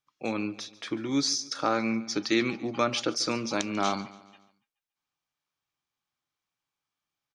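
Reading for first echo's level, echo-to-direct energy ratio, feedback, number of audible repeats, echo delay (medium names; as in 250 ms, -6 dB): -19.5 dB, -18.5 dB, 49%, 3, 142 ms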